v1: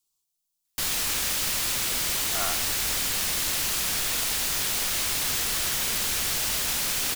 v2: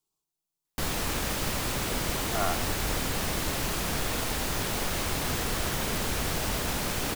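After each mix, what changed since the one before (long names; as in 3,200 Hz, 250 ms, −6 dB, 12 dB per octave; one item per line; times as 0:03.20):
speech: add low-shelf EQ 140 Hz −10 dB
master: add tilt shelving filter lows +8.5 dB, about 1,500 Hz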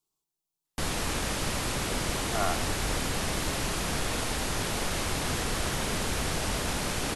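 background: add linear-phase brick-wall low-pass 12,000 Hz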